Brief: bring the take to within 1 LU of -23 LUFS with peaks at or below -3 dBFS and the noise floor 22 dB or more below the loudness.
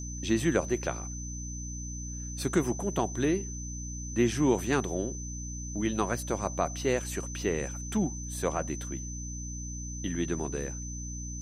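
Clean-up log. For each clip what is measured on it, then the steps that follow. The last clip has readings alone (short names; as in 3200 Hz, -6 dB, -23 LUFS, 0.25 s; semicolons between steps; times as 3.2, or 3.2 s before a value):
hum 60 Hz; harmonics up to 300 Hz; hum level -36 dBFS; steady tone 6100 Hz; tone level -41 dBFS; loudness -32.0 LUFS; peak -13.0 dBFS; loudness target -23.0 LUFS
-> de-hum 60 Hz, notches 5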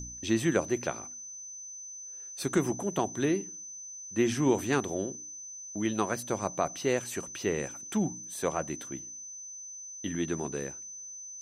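hum none; steady tone 6100 Hz; tone level -41 dBFS
-> notch 6100 Hz, Q 30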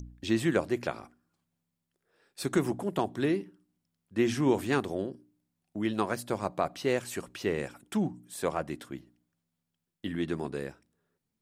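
steady tone none; loudness -31.5 LUFS; peak -13.5 dBFS; loudness target -23.0 LUFS
-> gain +8.5 dB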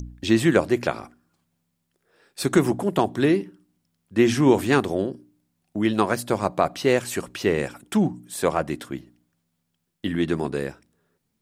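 loudness -23.0 LUFS; peak -5.0 dBFS; noise floor -76 dBFS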